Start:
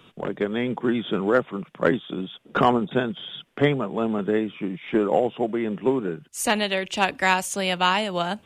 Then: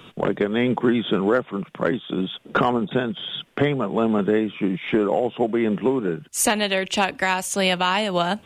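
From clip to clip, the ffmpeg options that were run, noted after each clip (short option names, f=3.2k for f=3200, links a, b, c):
-af "alimiter=limit=-17dB:level=0:latency=1:release=441,volume=7.5dB"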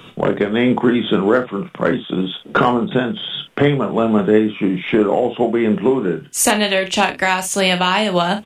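-af "aecho=1:1:28|56:0.335|0.237,volume=4.5dB"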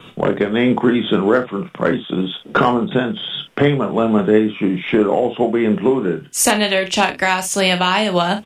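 -af "adynamicequalizer=threshold=0.00501:dfrequency=5300:dqfactor=6:tfrequency=5300:tqfactor=6:attack=5:release=100:ratio=0.375:range=2.5:mode=boostabove:tftype=bell"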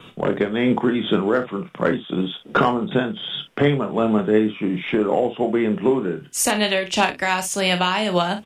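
-af "tremolo=f=2.7:d=0.3,volume=-2.5dB"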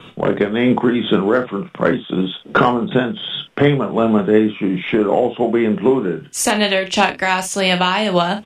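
-af "highshelf=f=11k:g=-10,volume=4dB"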